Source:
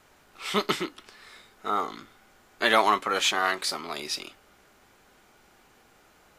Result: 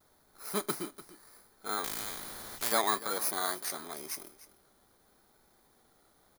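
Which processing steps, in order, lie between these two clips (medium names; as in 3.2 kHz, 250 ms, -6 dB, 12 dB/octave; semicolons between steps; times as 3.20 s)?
bit-reversed sample order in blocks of 16 samples; vibrato 0.79 Hz 36 cents; delay 296 ms -17 dB; 1.84–2.72 s: spectrum-flattening compressor 4:1; trim -7 dB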